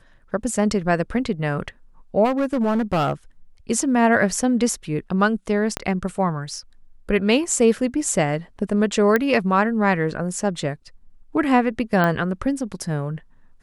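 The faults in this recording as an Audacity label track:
2.240000	3.120000	clipped -16.5 dBFS
5.770000	5.770000	pop -8 dBFS
9.160000	9.160000	pop -7 dBFS
12.040000	12.040000	pop -9 dBFS

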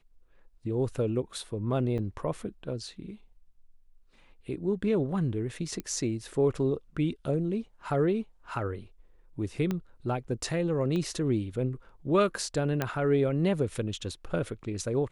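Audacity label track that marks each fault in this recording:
1.980000	1.990000	dropout 7 ms
5.800000	5.800000	pop -21 dBFS
9.710000	9.710000	pop -18 dBFS
10.960000	10.960000	pop -22 dBFS
12.820000	12.820000	pop -14 dBFS

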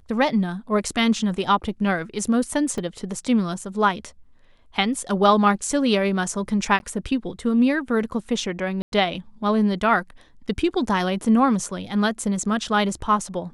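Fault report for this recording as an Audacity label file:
2.780000	2.780000	dropout 2.6 ms
6.790000	6.800000	dropout 11 ms
8.820000	8.920000	dropout 102 ms

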